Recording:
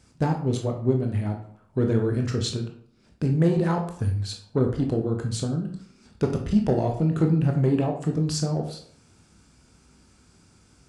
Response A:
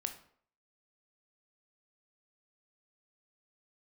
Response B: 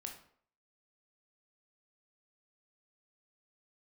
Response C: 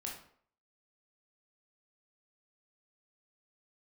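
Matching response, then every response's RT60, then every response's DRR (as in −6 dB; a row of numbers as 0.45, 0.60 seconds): B; 0.60, 0.60, 0.60 seconds; 6.0, 2.0, −2.0 decibels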